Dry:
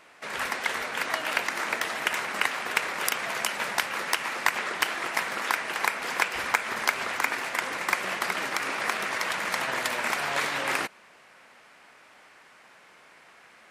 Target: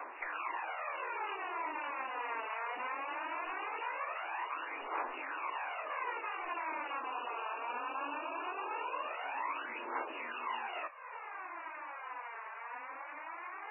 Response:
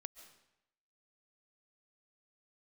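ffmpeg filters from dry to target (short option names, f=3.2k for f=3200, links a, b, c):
-filter_complex "[0:a]highpass=f=160:t=q:w=0.5412,highpass=f=160:t=q:w=1.307,lowpass=f=2.6k:t=q:w=0.5176,lowpass=f=2.6k:t=q:w=0.7071,lowpass=f=2.6k:t=q:w=1.932,afreqshift=97,asettb=1/sr,asplit=3[a][b][c];[a]atrim=end=6.974[d];[b]atrim=start=6.97:end=9.1,asetpts=PTS-STARTPTS,afade=t=in:d=0.004:c=qsin,afade=t=out:st=2.126:d=0.004:c=qsin,equalizer=f=2k:t=o:w=0.35:g=12.5[e];[c]atrim=start=9.096[f];[d][e]acrossfade=d=0.004:c1=hsin:c2=qsin[g];[g][f]acrossfade=d=0.004:c1=qsin:c2=hsin,afftfilt=real='re*lt(hypot(re,im),0.0708)':imag='im*lt(hypot(re,im),0.0708)':win_size=1024:overlap=0.75,aeval=exprs='0.188*(cos(1*acos(clip(val(0)/0.188,-1,1)))-cos(1*PI/2))+0.0119*(cos(4*acos(clip(val(0)/0.188,-1,1)))-cos(4*PI/2))+0.00168*(cos(5*acos(clip(val(0)/0.188,-1,1)))-cos(5*PI/2))':c=same,acompressor=threshold=-49dB:ratio=4,aphaser=in_gain=1:out_gain=1:delay=4.6:decay=0.63:speed=0.2:type=triangular,equalizer=f=1k:t=o:w=0.63:g=11.5,volume=3dB" -ar 11025 -c:a libmp3lame -b:a 8k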